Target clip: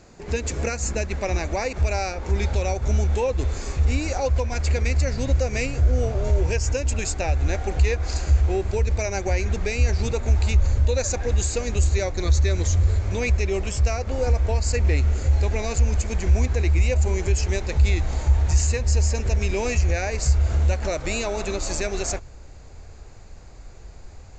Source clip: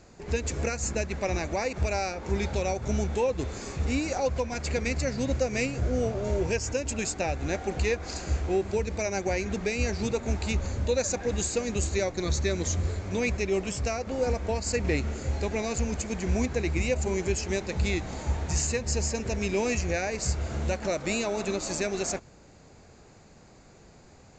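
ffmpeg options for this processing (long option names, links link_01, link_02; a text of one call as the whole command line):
ffmpeg -i in.wav -filter_complex "[0:a]asubboost=boost=10:cutoff=57,asplit=2[link_01][link_02];[link_02]alimiter=limit=-18.5dB:level=0:latency=1,volume=3dB[link_03];[link_01][link_03]amix=inputs=2:normalize=0,volume=-4dB" out.wav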